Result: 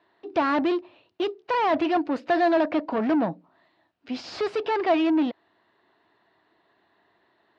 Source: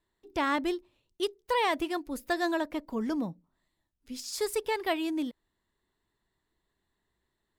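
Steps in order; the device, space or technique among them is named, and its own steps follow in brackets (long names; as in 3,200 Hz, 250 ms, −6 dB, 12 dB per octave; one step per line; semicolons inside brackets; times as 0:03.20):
overdrive pedal into a guitar cabinet (mid-hump overdrive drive 28 dB, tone 6,600 Hz, clips at −16 dBFS; loudspeaker in its box 100–3,700 Hz, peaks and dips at 100 Hz +6 dB, 310 Hz +5 dB, 680 Hz +8 dB, 2,100 Hz −4 dB, 3,400 Hz −6 dB)
level −2.5 dB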